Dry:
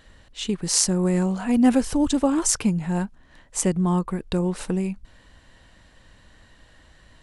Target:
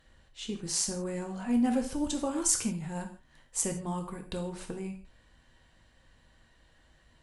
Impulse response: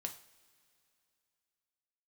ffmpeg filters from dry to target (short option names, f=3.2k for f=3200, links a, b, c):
-filter_complex "[0:a]asettb=1/sr,asplit=3[a][b][c];[a]atrim=end=1.944[d];[b]atrim=start=1.94:end=4.47,asetpts=PTS-STARTPTS,afade=t=in:d=0.004:c=qsin,afade=t=out:st=2.526:d=0.004:c=qsin,highshelf=f=5k:g=8[e];[c]atrim=start=4.466[f];[d][e]acrossfade=d=0.004:c1=hsin:c2=qsin[g];[g][f]acrossfade=d=0.004:c1=qsin:c2=hsin[h];[1:a]atrim=start_sample=2205,atrim=end_sample=6174,asetrate=34839,aresample=44100[i];[h][i]afir=irnorm=-1:irlink=0,volume=-9dB"